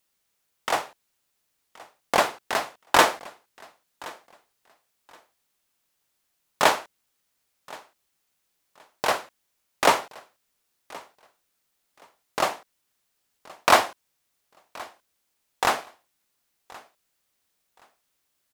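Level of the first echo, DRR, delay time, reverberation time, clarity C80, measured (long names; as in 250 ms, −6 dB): −22.0 dB, no reverb audible, 1,073 ms, no reverb audible, no reverb audible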